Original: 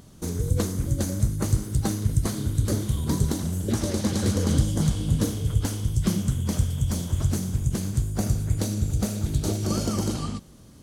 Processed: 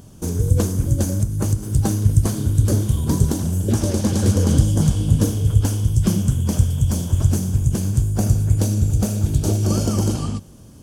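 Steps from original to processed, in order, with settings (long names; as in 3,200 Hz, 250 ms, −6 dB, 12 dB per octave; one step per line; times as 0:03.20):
thirty-one-band graphic EQ 100 Hz +5 dB, 1,250 Hz −4 dB, 2,000 Hz −8 dB, 4,000 Hz −8 dB
0:01.11–0:01.63: downward compressor 10 to 1, threshold −20 dBFS, peak gain reduction 9 dB
level +5 dB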